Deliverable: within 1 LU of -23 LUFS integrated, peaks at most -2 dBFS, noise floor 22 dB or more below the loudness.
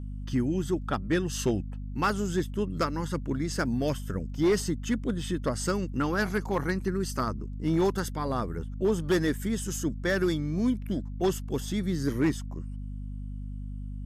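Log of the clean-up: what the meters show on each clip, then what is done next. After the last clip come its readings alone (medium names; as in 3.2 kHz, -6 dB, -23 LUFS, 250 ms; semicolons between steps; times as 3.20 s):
clipped samples 0.6%; clipping level -18.5 dBFS; hum 50 Hz; highest harmonic 250 Hz; hum level -34 dBFS; loudness -29.5 LUFS; peak level -18.5 dBFS; loudness target -23.0 LUFS
-> clip repair -18.5 dBFS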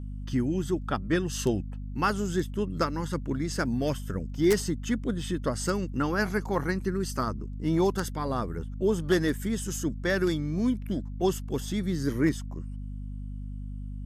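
clipped samples 0.0%; hum 50 Hz; highest harmonic 250 Hz; hum level -34 dBFS
-> hum notches 50/100/150/200/250 Hz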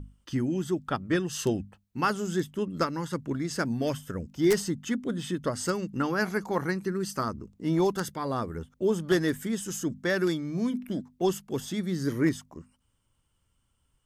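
hum not found; loudness -29.5 LUFS; peak level -9.5 dBFS; loudness target -23.0 LUFS
-> trim +6.5 dB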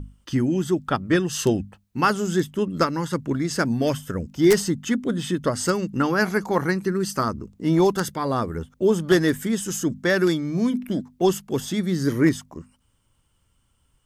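loudness -23.0 LUFS; peak level -3.0 dBFS; noise floor -67 dBFS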